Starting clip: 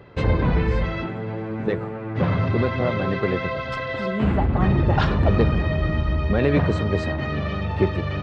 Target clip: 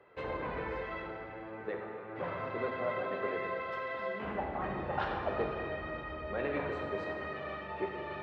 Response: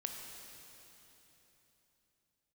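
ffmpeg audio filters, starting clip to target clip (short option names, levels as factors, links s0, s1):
-filter_complex "[0:a]acrossover=split=370 2900:gain=0.126 1 0.2[s0][s1][s2];[s0][s1][s2]amix=inputs=3:normalize=0[s3];[1:a]atrim=start_sample=2205,asetrate=79380,aresample=44100[s4];[s3][s4]afir=irnorm=-1:irlink=0,volume=0.708"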